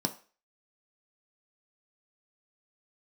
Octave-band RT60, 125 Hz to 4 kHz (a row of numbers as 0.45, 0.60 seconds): 0.25, 0.30, 0.40, 0.35, 0.40, 0.40 seconds